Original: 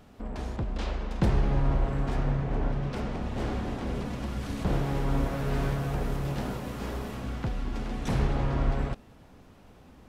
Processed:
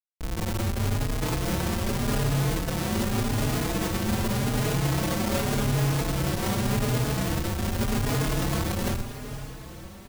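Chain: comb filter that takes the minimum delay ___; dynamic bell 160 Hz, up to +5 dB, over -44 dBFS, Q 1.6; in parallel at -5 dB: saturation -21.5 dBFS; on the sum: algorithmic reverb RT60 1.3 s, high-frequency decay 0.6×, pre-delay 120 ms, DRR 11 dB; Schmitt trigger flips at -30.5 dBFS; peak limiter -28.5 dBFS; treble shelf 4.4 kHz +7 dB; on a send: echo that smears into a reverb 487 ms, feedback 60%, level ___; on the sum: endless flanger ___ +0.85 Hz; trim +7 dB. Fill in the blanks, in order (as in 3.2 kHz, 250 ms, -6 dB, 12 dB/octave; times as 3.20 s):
9 ms, -11.5 dB, 4.3 ms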